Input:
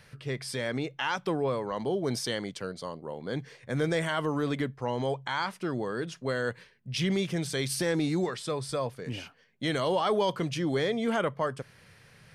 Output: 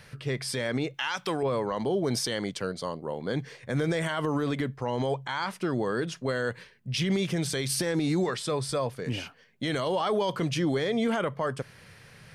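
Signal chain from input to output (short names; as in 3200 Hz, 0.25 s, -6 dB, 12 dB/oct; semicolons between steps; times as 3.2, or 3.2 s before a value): 0.94–1.43 tilt shelf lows -6.5 dB; limiter -23.5 dBFS, peak gain reduction 8.5 dB; gain +4.5 dB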